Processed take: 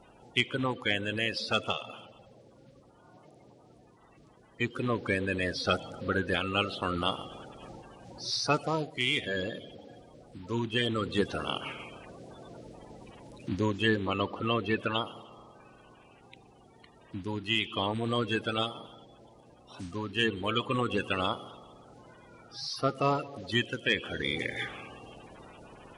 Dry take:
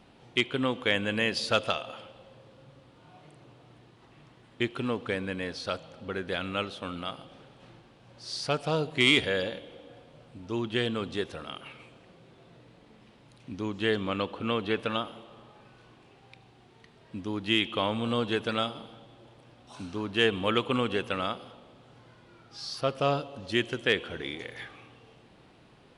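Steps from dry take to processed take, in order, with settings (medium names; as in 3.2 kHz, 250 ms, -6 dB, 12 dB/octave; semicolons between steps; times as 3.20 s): coarse spectral quantiser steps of 30 dB; gain riding 0.5 s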